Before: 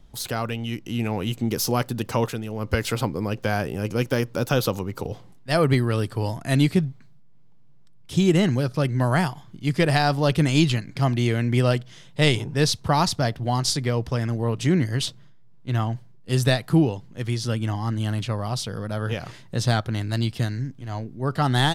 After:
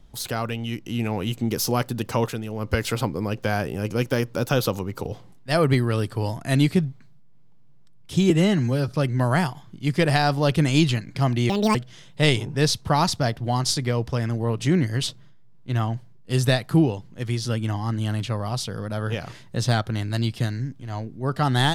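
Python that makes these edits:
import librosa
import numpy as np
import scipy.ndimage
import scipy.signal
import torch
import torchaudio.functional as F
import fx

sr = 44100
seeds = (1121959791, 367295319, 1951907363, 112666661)

y = fx.edit(x, sr, fx.stretch_span(start_s=8.3, length_s=0.39, factor=1.5),
    fx.speed_span(start_s=11.3, length_s=0.44, speed=1.73), tone=tone)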